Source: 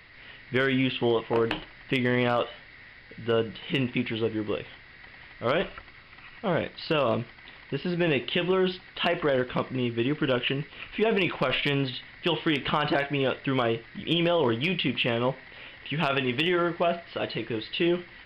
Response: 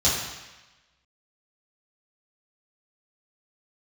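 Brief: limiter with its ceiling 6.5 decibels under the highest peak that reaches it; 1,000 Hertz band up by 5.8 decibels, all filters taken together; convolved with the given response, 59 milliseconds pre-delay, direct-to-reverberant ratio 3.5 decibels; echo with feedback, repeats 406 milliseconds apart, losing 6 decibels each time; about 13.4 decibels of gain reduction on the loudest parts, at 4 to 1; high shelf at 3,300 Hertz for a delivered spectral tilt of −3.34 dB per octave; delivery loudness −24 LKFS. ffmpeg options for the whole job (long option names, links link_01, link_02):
-filter_complex "[0:a]equalizer=frequency=1000:width_type=o:gain=7,highshelf=frequency=3300:gain=6,acompressor=threshold=-34dB:ratio=4,alimiter=level_in=2.5dB:limit=-24dB:level=0:latency=1,volume=-2.5dB,aecho=1:1:406|812|1218|1624|2030|2436:0.501|0.251|0.125|0.0626|0.0313|0.0157,asplit=2[link_01][link_02];[1:a]atrim=start_sample=2205,adelay=59[link_03];[link_02][link_03]afir=irnorm=-1:irlink=0,volume=-18dB[link_04];[link_01][link_04]amix=inputs=2:normalize=0,volume=10.5dB"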